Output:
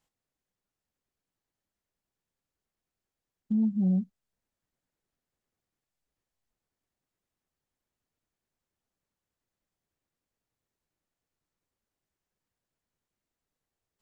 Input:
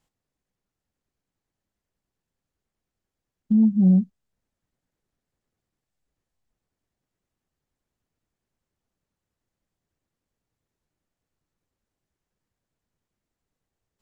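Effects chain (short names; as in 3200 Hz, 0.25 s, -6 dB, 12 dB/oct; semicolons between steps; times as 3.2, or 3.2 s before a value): in parallel at -3 dB: limiter -17.5 dBFS, peak gain reduction 7 dB; on the sum: low shelf 320 Hz -5.5 dB; gain -7.5 dB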